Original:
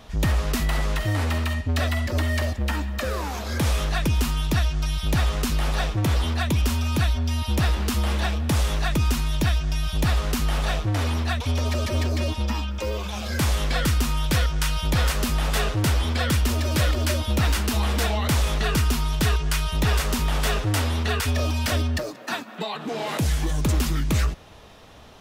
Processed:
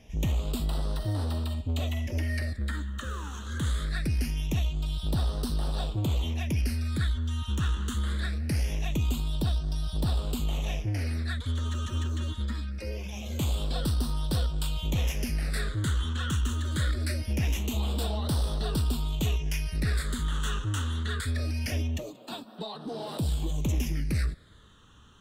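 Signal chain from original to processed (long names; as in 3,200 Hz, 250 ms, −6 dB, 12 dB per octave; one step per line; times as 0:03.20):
all-pass phaser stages 8, 0.23 Hz, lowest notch 660–2,200 Hz
harmonic generator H 4 −27 dB, 6 −27 dB, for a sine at −12.5 dBFS
level −6.5 dB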